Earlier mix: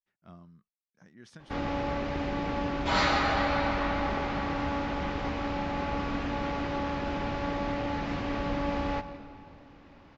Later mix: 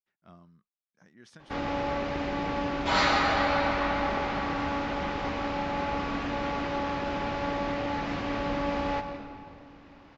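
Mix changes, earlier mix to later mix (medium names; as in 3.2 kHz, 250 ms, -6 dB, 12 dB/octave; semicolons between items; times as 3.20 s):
background: send +6.5 dB; master: add bass shelf 220 Hz -6 dB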